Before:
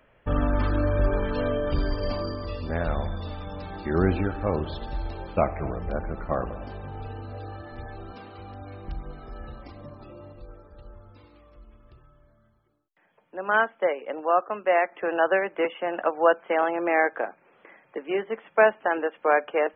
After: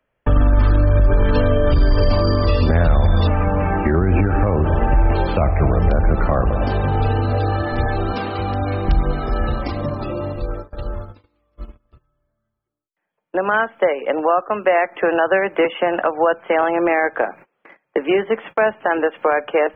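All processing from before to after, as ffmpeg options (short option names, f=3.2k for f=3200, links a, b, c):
-filter_complex "[0:a]asettb=1/sr,asplit=3[a][b][c];[a]atrim=end=3.274[d];[b]atrim=start=3.27:end=5.15,asetpts=PTS-STARTPTS,afade=t=in:d=0.004:c=qsin,afade=t=out:st=1.876:d=0.004:c=qsin,asuperstop=centerf=4300:order=8:qfactor=0.99,acompressor=threshold=-25dB:ratio=5:attack=3.2:release=140:knee=1:detection=peak[e];[c]atrim=start=5.146[f];[d][e]acrossfade=d=0.004:c1=hsin:c2=qsin[g];[g][f]acrossfade=d=0.004:c1=qsin:c2=hsin,agate=range=-32dB:threshold=-47dB:ratio=16:detection=peak,acrossover=split=120[h][i];[i]acompressor=threshold=-37dB:ratio=3[j];[h][j]amix=inputs=2:normalize=0,alimiter=level_in=25dB:limit=-1dB:release=50:level=0:latency=1,volume=-5.5dB"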